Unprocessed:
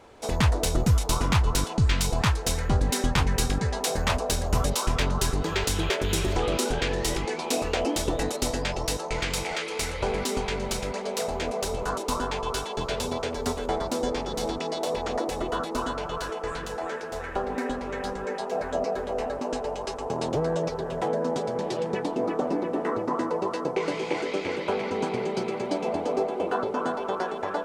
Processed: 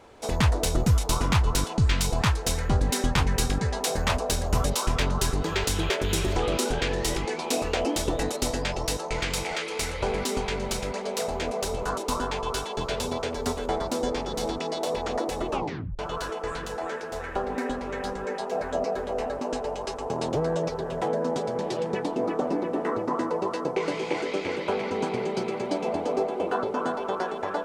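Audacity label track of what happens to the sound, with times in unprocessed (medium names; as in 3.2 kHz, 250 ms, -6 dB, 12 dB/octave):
15.470000	15.470000	tape stop 0.52 s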